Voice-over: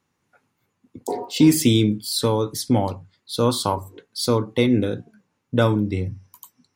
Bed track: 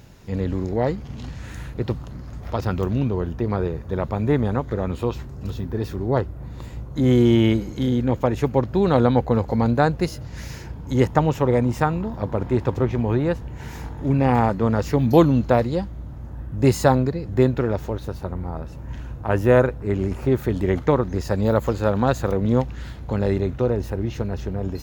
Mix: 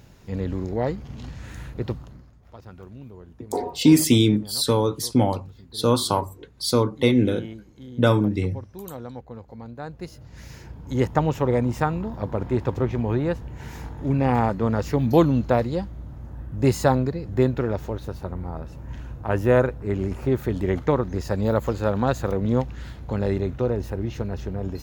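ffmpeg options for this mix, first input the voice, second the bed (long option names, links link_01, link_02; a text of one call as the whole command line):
ffmpeg -i stem1.wav -i stem2.wav -filter_complex "[0:a]adelay=2450,volume=0dB[link_01];[1:a]volume=14dB,afade=type=out:start_time=1.87:duration=0.47:silence=0.149624,afade=type=in:start_time=9.76:duration=1.48:silence=0.141254[link_02];[link_01][link_02]amix=inputs=2:normalize=0" out.wav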